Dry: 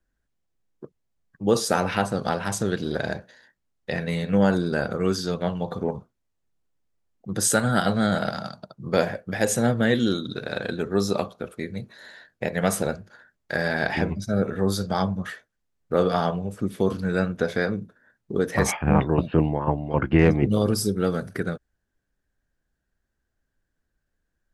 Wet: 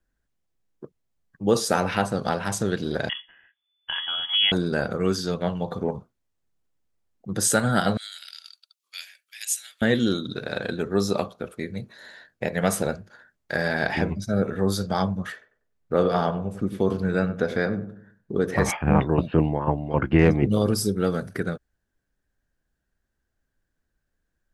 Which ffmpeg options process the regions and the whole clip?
ffmpeg -i in.wav -filter_complex "[0:a]asettb=1/sr,asplit=3[link_01][link_02][link_03];[link_01]atrim=end=3.094[link_04];[link_02]atrim=start=3.09:end=4.52,asetpts=PTS-STARTPTS,afade=type=in:duration=0.004:curve=qsin,afade=type=out:start_time=1.426:duration=0.004:curve=qsin,equalizer=frequency=290:width=2.2:gain=-12,bandreject=frequency=1700:width=17,lowpass=frequency=3000:width_type=q:width=0.5098,lowpass=frequency=3000:width_type=q:width=0.6013,lowpass=frequency=3000:width_type=q:width=0.9,lowpass=frequency=3000:width_type=q:width=2.563,afreqshift=-3500[link_05];[link_03]atrim=start=4.516[link_06];[link_04][link_05]acrossfade=duration=0.004:curve1=hsin:curve2=qsin[link_07];[link_07][link_06]acrossfade=duration=0.004:curve1=qsin:curve2=hsin,asettb=1/sr,asplit=3[link_08][link_09][link_10];[link_08]atrim=end=7.974[link_11];[link_09]atrim=start=7.97:end=9.82,asetpts=PTS-STARTPTS,afade=type=in:duration=0.004:curve=qsin,afade=type=out:start_time=1.846:duration=0.004:curve=qsin,highpass=frequency=2600:width_type=q:width=2.1,aderivative[link_12];[link_10]atrim=start=9.816[link_13];[link_11][link_12]acrossfade=duration=0.004:curve1=hsin:curve2=qsin[link_14];[link_14][link_13]acrossfade=duration=0.004:curve1=qsin:curve2=hsin,asettb=1/sr,asplit=3[link_15][link_16][link_17];[link_15]atrim=end=15.324[link_18];[link_16]atrim=start=15.32:end=18.7,asetpts=PTS-STARTPTS,afade=type=in:duration=0.004:curve=qsin,afade=type=out:start_time=3.376:duration=0.004:curve=qsin,highshelf=frequency=4300:gain=-6,asplit=2[link_19][link_20];[link_20]adelay=96,lowpass=frequency=1000:poles=1,volume=-10.5dB,asplit=2[link_21][link_22];[link_22]adelay=96,lowpass=frequency=1000:poles=1,volume=0.42,asplit=2[link_23][link_24];[link_24]adelay=96,lowpass=frequency=1000:poles=1,volume=0.42,asplit=2[link_25][link_26];[link_26]adelay=96,lowpass=frequency=1000:poles=1,volume=0.42[link_27];[link_19][link_21][link_23][link_25][link_27]amix=inputs=5:normalize=0,atrim=end_sample=149058[link_28];[link_17]atrim=start=18.696[link_29];[link_18][link_28]acrossfade=duration=0.004:curve1=hsin:curve2=qsin[link_30];[link_30][link_29]acrossfade=duration=0.004:curve1=qsin:curve2=hsin" out.wav

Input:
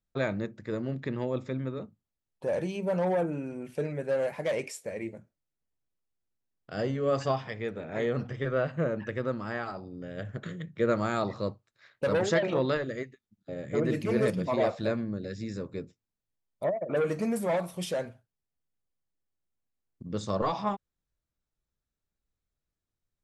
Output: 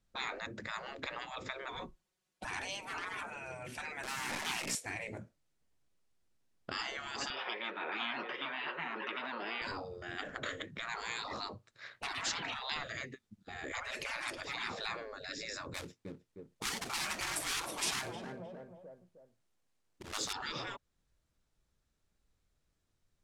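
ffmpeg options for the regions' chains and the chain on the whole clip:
ffmpeg -i in.wav -filter_complex "[0:a]asettb=1/sr,asplit=3[link_01][link_02][link_03];[link_01]atrim=end=1.684[link_04];[link_02]atrim=start=1.68:end=2.45,asetpts=PTS-STARTPTS,afade=type=in:duration=0.004:curve=qsin,afade=type=out:start_time=0.766:duration=0.004:curve=qsin,highpass=frequency=240:width=0.5412,highpass=frequency=240:width=1.3066,aecho=1:1:5.4:0.82,atrim=end_sample=33957,afreqshift=-190[link_05];[link_03]atrim=start=2.446[link_06];[link_04][link_05]acrossfade=duration=0.004:curve1=hsin:curve2=qsin[link_07];[link_07][link_06]acrossfade=duration=0.004:curve1=qsin:curve2=hsin,asettb=1/sr,asplit=3[link_08][link_09][link_10];[link_08]atrim=end=4.034[link_11];[link_09]atrim=start=4.03:end=4.75,asetpts=PTS-STARTPTS,afade=type=in:duration=0.004:curve=qsin,afade=type=out:start_time=0.716:duration=0.004:curve=qsin,acrusher=bits=8:dc=4:mix=0:aa=0.000001,aeval=exprs='val(0)+0.00562*(sin(2*PI*60*n/s)+sin(2*PI*2*60*n/s)/2+sin(2*PI*3*60*n/s)/3+sin(2*PI*4*60*n/s)/4+sin(2*PI*5*60*n/s)/5)':channel_layout=same[link_12];[link_10]atrim=start=4.746[link_13];[link_11][link_12]acrossfade=duration=0.004:curve1=hsin:curve2=qsin[link_14];[link_14][link_13]acrossfade=duration=0.004:curve1=qsin:curve2=hsin,asettb=1/sr,asplit=3[link_15][link_16][link_17];[link_15]atrim=end=7.304[link_18];[link_16]atrim=start=7.3:end=9.62,asetpts=PTS-STARTPTS,afade=type=in:duration=0.004:curve=qsin,afade=type=out:start_time=2.316:duration=0.004:curve=qsin,highpass=frequency=440:width=0.5412,highpass=frequency=440:width=1.3066,equalizer=frequency=660:width_type=q:width=4:gain=-8,equalizer=frequency=1000:width_type=q:width=4:gain=8,equalizer=frequency=2800:width_type=q:width=4:gain=4,lowpass=frequency=3900:width=0.5412,lowpass=frequency=3900:width=1.3066,aecho=1:1:5.5:0.39,atrim=end_sample=102312,aecho=1:1:618:0.119,atrim=end_sample=102312[link_19];[link_17]atrim=start=9.616[link_20];[link_18][link_19]acrossfade=duration=0.004:curve1=hsin:curve2=qsin[link_21];[link_21][link_20]acrossfade=duration=0.004:curve1=qsin:curve2=hsin,asettb=1/sr,asplit=3[link_22][link_23][link_24];[link_22]atrim=end=15.744[link_25];[link_23]atrim=start=15.74:end=20.33,asetpts=PTS-STARTPTS,afade=type=in:duration=0.004:curve=qsin,afade=type=out:start_time=4.586:duration=0.004:curve=qsin,lowshelf=frequency=190:gain=-7.5,acrusher=bits=3:mode=log:mix=0:aa=0.000001,asplit=2[link_26][link_27];[link_27]adelay=309,lowpass=frequency=1300:poles=1,volume=-12dB,asplit=2[link_28][link_29];[link_29]adelay=309,lowpass=frequency=1300:poles=1,volume=0.42,asplit=2[link_30][link_31];[link_31]adelay=309,lowpass=frequency=1300:poles=1,volume=0.42,asplit=2[link_32][link_33];[link_33]adelay=309,lowpass=frequency=1300:poles=1,volume=0.42[link_34];[link_26][link_28][link_30][link_32][link_34]amix=inputs=5:normalize=0,atrim=end_sample=202419[link_35];[link_24]atrim=start=20.326[link_36];[link_25][link_35]acrossfade=duration=0.004:curve1=hsin:curve2=qsin[link_37];[link_37][link_36]acrossfade=duration=0.004:curve1=qsin:curve2=hsin,lowpass=9600,alimiter=limit=-21dB:level=0:latency=1:release=330,afftfilt=real='re*lt(hypot(re,im),0.0251)':imag='im*lt(hypot(re,im),0.0251)':win_size=1024:overlap=0.75,volume=8.5dB" out.wav

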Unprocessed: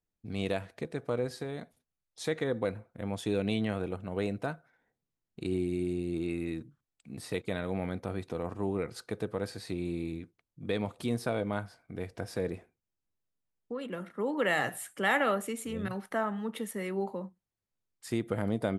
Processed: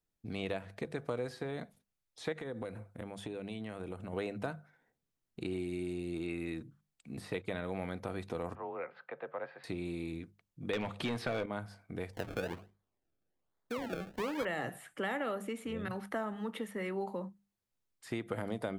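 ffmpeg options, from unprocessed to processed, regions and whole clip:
ffmpeg -i in.wav -filter_complex "[0:a]asettb=1/sr,asplit=3[link_01][link_02][link_03];[link_01]atrim=end=2.324[link_04];[link_02]atrim=start=2.32:end=4.13,asetpts=PTS-STARTPTS,afade=type=in:duration=0.004:curve=qsin,afade=type=out:start_time=1.806:duration=0.004:curve=qsin,equalizer=frequency=9100:width_type=o:width=0.54:gain=6.5,acompressor=threshold=-37dB:ratio=6:attack=3.2:release=140:knee=1:detection=peak[link_05];[link_03]atrim=start=4.126[link_06];[link_04][link_05]acrossfade=duration=0.004:curve1=hsin:curve2=qsin[link_07];[link_07][link_06]acrossfade=duration=0.004:curve1=qsin:curve2=hsin,asettb=1/sr,asplit=3[link_08][link_09][link_10];[link_08]atrim=end=8.554[link_11];[link_09]atrim=start=8.55:end=9.64,asetpts=PTS-STARTPTS,afade=type=in:duration=0.004:curve=qsin,afade=type=out:start_time=1.086:duration=0.004:curve=qsin,lowpass=frequency=3300:width=0.5412,lowpass=frequency=3300:width=1.3066,acrossover=split=520 2500:gain=0.0794 1 0.0891[link_12][link_13][link_14];[link_12][link_13][link_14]amix=inputs=3:normalize=0,afreqshift=36[link_15];[link_10]atrim=start=9.636[link_16];[link_11][link_15]acrossfade=duration=0.004:curve1=hsin:curve2=qsin[link_17];[link_17][link_16]acrossfade=duration=0.004:curve1=qsin:curve2=hsin,asettb=1/sr,asplit=3[link_18][link_19][link_20];[link_18]atrim=end=10.734[link_21];[link_19]atrim=start=10.73:end=11.46,asetpts=PTS-STARTPTS,afade=type=in:duration=0.004:curve=qsin,afade=type=out:start_time=0.726:duration=0.004:curve=qsin,equalizer=frequency=2800:width=0.59:gain=8,acontrast=53,asoftclip=type=hard:threshold=-21dB[link_22];[link_20]atrim=start=11.456[link_23];[link_21][link_22]acrossfade=duration=0.004:curve1=hsin:curve2=qsin[link_24];[link_24][link_23]acrossfade=duration=0.004:curve1=qsin:curve2=hsin,asettb=1/sr,asplit=3[link_25][link_26][link_27];[link_25]atrim=end=12.134[link_28];[link_26]atrim=start=12.13:end=14.45,asetpts=PTS-STARTPTS,afade=type=in:duration=0.004:curve=qsin,afade=type=out:start_time=2.316:duration=0.004:curve=qsin,highshelf=frequency=6600:gain=6,acrusher=samples=31:mix=1:aa=0.000001:lfo=1:lforange=31:lforate=1.2[link_29];[link_27]atrim=start=14.446[link_30];[link_28][link_29]acrossfade=duration=0.004:curve1=hsin:curve2=qsin[link_31];[link_31][link_30]acrossfade=duration=0.004:curve1=qsin:curve2=hsin,bandreject=frequency=50:width_type=h:width=6,bandreject=frequency=100:width_type=h:width=6,bandreject=frequency=150:width_type=h:width=6,bandreject=frequency=200:width_type=h:width=6,acrossover=split=590|3400[link_32][link_33][link_34];[link_32]acompressor=threshold=-38dB:ratio=4[link_35];[link_33]acompressor=threshold=-40dB:ratio=4[link_36];[link_34]acompressor=threshold=-59dB:ratio=4[link_37];[link_35][link_36][link_37]amix=inputs=3:normalize=0,volume=1dB" out.wav

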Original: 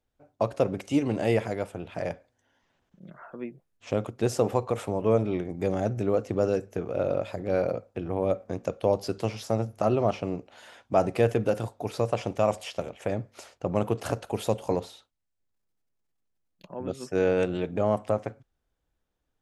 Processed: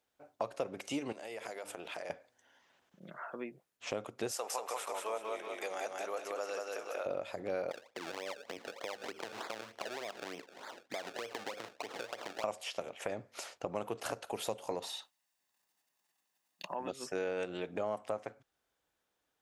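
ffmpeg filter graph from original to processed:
ffmpeg -i in.wav -filter_complex "[0:a]asettb=1/sr,asplit=3[link_01][link_02][link_03];[link_01]atrim=end=1.124[link_04];[link_02]atrim=start=1.12:end=2.1,asetpts=PTS-STARTPTS,afade=type=in:duration=0.004:curve=qsin,afade=type=out:start_time=0.976:duration=0.004:curve=qsin,bass=frequency=250:gain=-10,treble=frequency=4000:gain=5,bandreject=frequency=50:width_type=h:width=6,bandreject=frequency=100:width_type=h:width=6,bandreject=frequency=150:width_type=h:width=6,bandreject=frequency=200:width_type=h:width=6,bandreject=frequency=250:width_type=h:width=6,bandreject=frequency=300:width_type=h:width=6,acompressor=threshold=-38dB:ratio=12:attack=3.2:release=140:knee=1:detection=peak[link_05];[link_03]atrim=start=2.096[link_06];[link_04][link_05]acrossfade=duration=0.004:curve1=hsin:curve2=qsin[link_07];[link_07][link_06]acrossfade=duration=0.004:curve1=qsin:curve2=hsin,asettb=1/sr,asplit=3[link_08][link_09][link_10];[link_08]atrim=end=4.314[link_11];[link_09]atrim=start=4.31:end=7.06,asetpts=PTS-STARTPTS,afade=type=in:duration=0.004:curve=qsin,afade=type=out:start_time=2.746:duration=0.004:curve=qsin,highpass=780,highshelf=frequency=9100:gain=8,aecho=1:1:186|372|558|744|930:0.708|0.269|0.102|0.0388|0.0148,atrim=end_sample=121275[link_12];[link_10]atrim=start=7.056[link_13];[link_11][link_12]acrossfade=duration=0.004:curve1=hsin:curve2=qsin[link_14];[link_14][link_13]acrossfade=duration=0.004:curve1=qsin:curve2=hsin,asettb=1/sr,asplit=3[link_15][link_16][link_17];[link_15]atrim=end=7.714[link_18];[link_16]atrim=start=7.71:end=12.44,asetpts=PTS-STARTPTS,afade=type=in:duration=0.004:curve=qsin,afade=type=out:start_time=4.726:duration=0.004:curve=qsin,acompressor=threshold=-34dB:ratio=6:attack=3.2:release=140:knee=1:detection=peak,acrusher=samples=30:mix=1:aa=0.000001:lfo=1:lforange=30:lforate=3.3,acrossover=split=220 7100:gain=0.224 1 0.224[link_19][link_20][link_21];[link_19][link_20][link_21]amix=inputs=3:normalize=0[link_22];[link_17]atrim=start=12.436[link_23];[link_18][link_22]acrossfade=duration=0.004:curve1=hsin:curve2=qsin[link_24];[link_24][link_23]acrossfade=duration=0.004:curve1=qsin:curve2=hsin,asettb=1/sr,asplit=3[link_25][link_26][link_27];[link_25]atrim=end=14.824[link_28];[link_26]atrim=start=14.82:end=16.91,asetpts=PTS-STARTPTS,afade=type=in:duration=0.004:curve=qsin,afade=type=out:start_time=2.086:duration=0.004:curve=qsin,highpass=frequency=340:poles=1,aecho=1:1:1.1:0.45,atrim=end_sample=92169,acontrast=57[link_29];[link_27]atrim=start=16.906[link_30];[link_28][link_29]acrossfade=duration=0.004:curve1=hsin:curve2=qsin[link_31];[link_31][link_30]acrossfade=duration=0.004:curve1=qsin:curve2=hsin,highpass=frequency=670:poles=1,acompressor=threshold=-43dB:ratio=2.5,volume=4.5dB" out.wav

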